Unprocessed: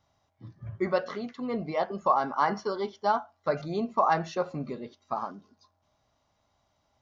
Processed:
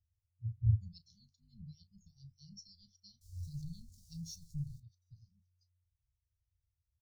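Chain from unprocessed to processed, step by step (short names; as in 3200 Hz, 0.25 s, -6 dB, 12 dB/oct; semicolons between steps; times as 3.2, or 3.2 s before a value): 3.21–4.8 zero-crossing step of -39.5 dBFS; inverse Chebyshev band-stop 300–1800 Hz, stop band 60 dB; low shelf 330 Hz +7.5 dB; doubler 35 ms -13.5 dB; spectral expander 1.5:1; gain +9 dB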